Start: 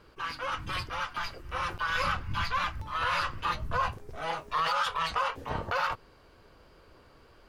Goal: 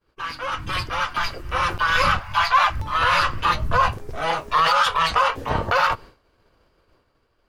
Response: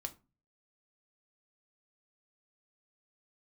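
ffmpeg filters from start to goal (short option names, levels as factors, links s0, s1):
-filter_complex "[0:a]agate=range=0.0224:threshold=0.00501:ratio=3:detection=peak,dynaudnorm=f=120:g=13:m=1.88,asettb=1/sr,asplit=3[s0][s1][s2];[s0]atrim=end=2.194[s3];[s1]atrim=start=2.19:end=2.7,asetpts=PTS-STARTPTS,afade=t=in:d=0.004:c=qsin,afade=t=out:st=0.506:d=0.004:c=qsin,lowshelf=f=490:t=q:w=3:g=-12.5[s4];[s2]atrim=start=2.696[s5];[s3][s4]acrossfade=d=0.004:c1=hsin:c2=qsin[s6];[s6][s5]acrossfade=d=0.004:c1=qsin:c2=hsin,asplit=2[s7][s8];[1:a]atrim=start_sample=2205[s9];[s8][s9]afir=irnorm=-1:irlink=0,volume=0.2[s10];[s7][s10]amix=inputs=2:normalize=0,volume=1.58"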